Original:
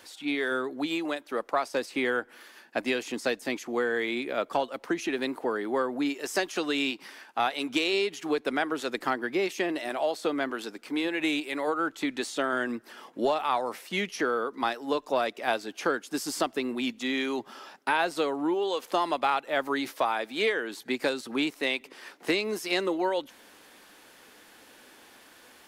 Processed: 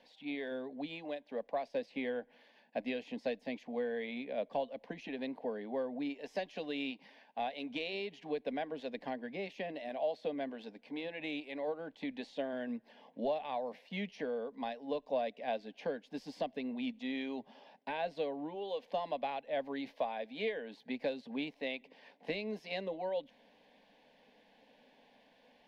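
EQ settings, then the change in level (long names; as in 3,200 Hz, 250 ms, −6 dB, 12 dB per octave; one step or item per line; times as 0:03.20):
phaser with its sweep stopped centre 350 Hz, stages 6
dynamic equaliser 900 Hz, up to −5 dB, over −48 dBFS, Q 3.4
high-frequency loss of the air 320 metres
−4.0 dB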